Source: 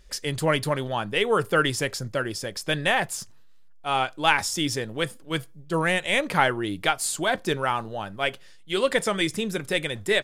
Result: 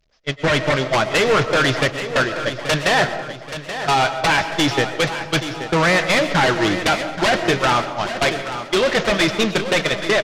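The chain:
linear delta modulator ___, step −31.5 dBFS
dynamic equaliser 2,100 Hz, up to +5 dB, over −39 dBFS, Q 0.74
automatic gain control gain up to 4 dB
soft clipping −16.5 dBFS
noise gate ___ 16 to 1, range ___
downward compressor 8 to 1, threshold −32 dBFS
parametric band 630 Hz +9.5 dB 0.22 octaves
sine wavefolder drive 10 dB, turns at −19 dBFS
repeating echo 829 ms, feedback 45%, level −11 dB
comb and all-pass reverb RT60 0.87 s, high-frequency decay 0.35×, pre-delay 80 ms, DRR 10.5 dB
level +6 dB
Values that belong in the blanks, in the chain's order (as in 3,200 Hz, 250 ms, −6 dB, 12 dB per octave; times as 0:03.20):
32 kbit/s, −23 dBFS, −49 dB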